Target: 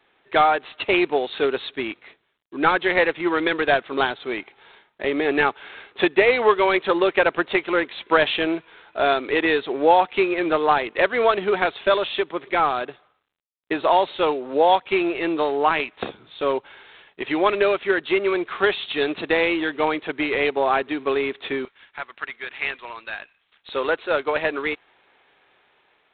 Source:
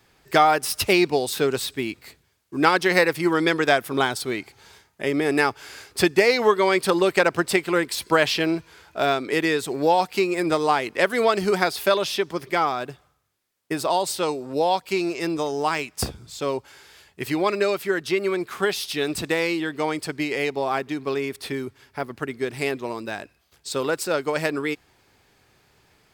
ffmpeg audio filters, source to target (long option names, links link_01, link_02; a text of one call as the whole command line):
ffmpeg -i in.wav -af "asetnsamples=nb_out_samples=441:pad=0,asendcmd='21.65 highpass f 1300;23.69 highpass f 460',highpass=330,dynaudnorm=framelen=350:gausssize=5:maxgain=5.5dB" -ar 8000 -c:a adpcm_g726 -b:a 24k out.wav